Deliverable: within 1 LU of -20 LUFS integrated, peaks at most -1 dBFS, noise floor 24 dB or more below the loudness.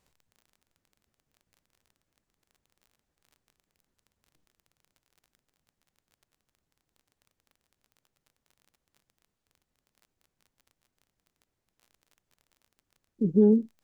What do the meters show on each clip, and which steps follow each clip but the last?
tick rate 27 per s; loudness -23.5 LUFS; peak level -11.0 dBFS; loudness target -20.0 LUFS
-> de-click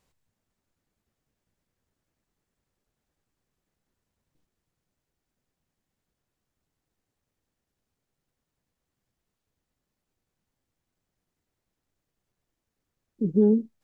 tick rate 0 per s; loudness -23.5 LUFS; peak level -11.0 dBFS; loudness target -20.0 LUFS
-> trim +3.5 dB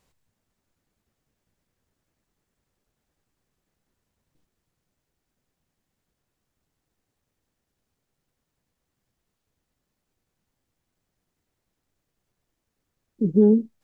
loudness -20.0 LUFS; peak level -7.5 dBFS; noise floor -81 dBFS

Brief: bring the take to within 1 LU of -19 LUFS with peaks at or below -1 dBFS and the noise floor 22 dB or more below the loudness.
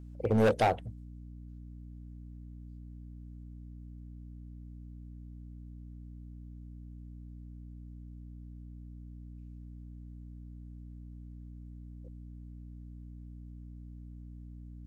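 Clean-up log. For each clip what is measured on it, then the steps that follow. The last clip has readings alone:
clipped samples 0.3%; clipping level -20.5 dBFS; hum 60 Hz; highest harmonic 300 Hz; hum level -44 dBFS; loudness -40.0 LUFS; peak level -20.5 dBFS; loudness target -19.0 LUFS
-> clip repair -20.5 dBFS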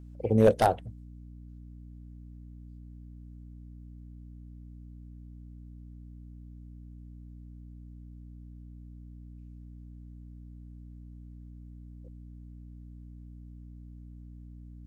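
clipped samples 0.0%; hum 60 Hz; highest harmonic 300 Hz; hum level -44 dBFS
-> de-hum 60 Hz, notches 5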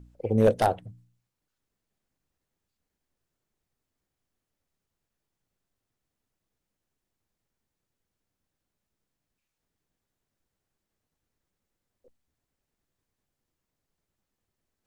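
hum not found; loudness -24.0 LUFS; peak level -11.0 dBFS; loudness target -19.0 LUFS
-> trim +5 dB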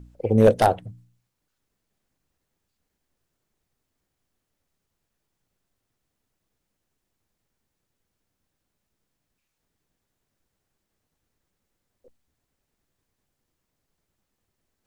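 loudness -19.0 LUFS; peak level -6.0 dBFS; noise floor -80 dBFS

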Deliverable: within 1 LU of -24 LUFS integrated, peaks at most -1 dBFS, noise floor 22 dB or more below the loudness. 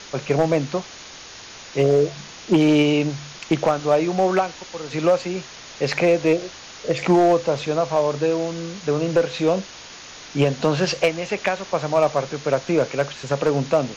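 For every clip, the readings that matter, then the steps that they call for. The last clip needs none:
clipped samples 1.4%; clipping level -10.0 dBFS; noise floor -40 dBFS; noise floor target -43 dBFS; loudness -21.0 LUFS; peak level -10.0 dBFS; loudness target -24.0 LUFS
-> clip repair -10 dBFS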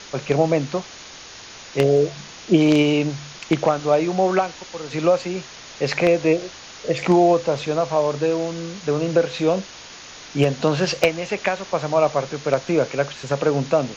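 clipped samples 0.0%; noise floor -40 dBFS; noise floor target -43 dBFS
-> noise print and reduce 6 dB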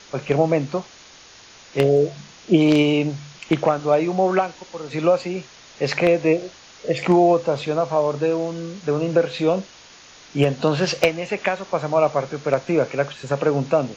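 noise floor -46 dBFS; loudness -21.0 LUFS; peak level -1.0 dBFS; loudness target -24.0 LUFS
-> trim -3 dB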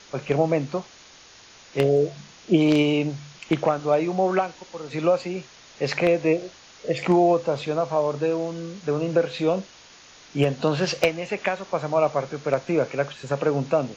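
loudness -24.0 LUFS; peak level -4.0 dBFS; noise floor -49 dBFS

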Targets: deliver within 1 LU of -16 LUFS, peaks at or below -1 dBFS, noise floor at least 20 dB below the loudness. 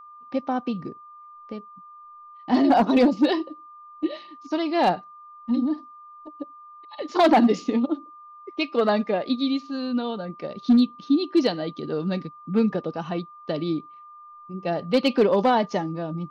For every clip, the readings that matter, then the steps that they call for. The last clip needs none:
clipped samples 0.3%; clipping level -11.5 dBFS; steady tone 1.2 kHz; tone level -43 dBFS; loudness -24.0 LUFS; peak level -11.5 dBFS; loudness target -16.0 LUFS
-> clip repair -11.5 dBFS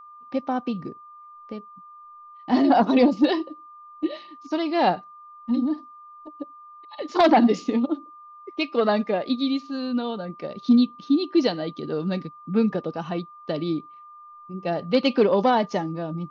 clipped samples 0.0%; steady tone 1.2 kHz; tone level -43 dBFS
-> band-stop 1.2 kHz, Q 30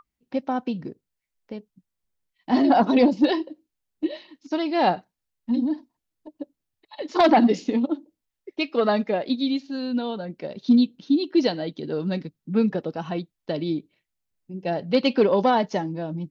steady tone not found; loudness -23.5 LUFS; peak level -4.0 dBFS; loudness target -16.0 LUFS
-> trim +7.5 dB; peak limiter -1 dBFS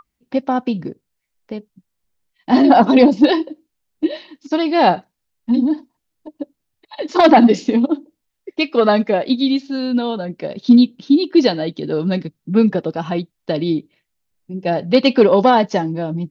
loudness -16.5 LUFS; peak level -1.0 dBFS; noise floor -76 dBFS

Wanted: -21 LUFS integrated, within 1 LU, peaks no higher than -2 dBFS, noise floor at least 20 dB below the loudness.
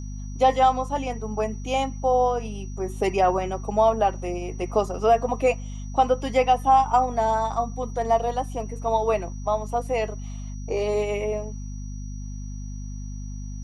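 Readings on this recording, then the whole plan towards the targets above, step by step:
hum 50 Hz; highest harmonic 250 Hz; hum level -31 dBFS; steady tone 5.8 kHz; tone level -49 dBFS; loudness -24.0 LUFS; peak level -7.5 dBFS; loudness target -21.0 LUFS
-> de-hum 50 Hz, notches 5; band-stop 5.8 kHz, Q 30; trim +3 dB

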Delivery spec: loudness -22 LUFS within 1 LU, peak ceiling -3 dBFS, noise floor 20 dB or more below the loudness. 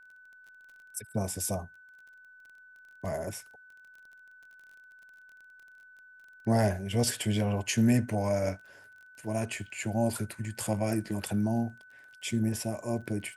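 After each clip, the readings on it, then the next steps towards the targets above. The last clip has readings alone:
tick rate 27 per s; steady tone 1.5 kHz; tone level -52 dBFS; loudness -31.0 LUFS; peak level -15.0 dBFS; loudness target -22.0 LUFS
-> de-click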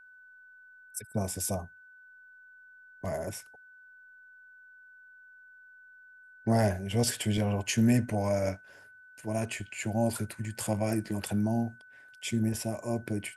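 tick rate 0 per s; steady tone 1.5 kHz; tone level -52 dBFS
-> band-stop 1.5 kHz, Q 30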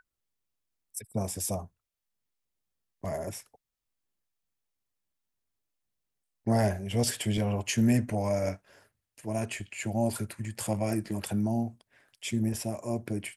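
steady tone not found; loudness -31.0 LUFS; peak level -14.5 dBFS; loudness target -22.0 LUFS
-> trim +9 dB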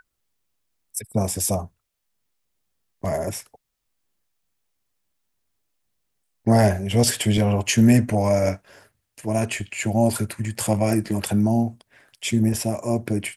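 loudness -22.0 LUFS; peak level -5.5 dBFS; noise floor -77 dBFS

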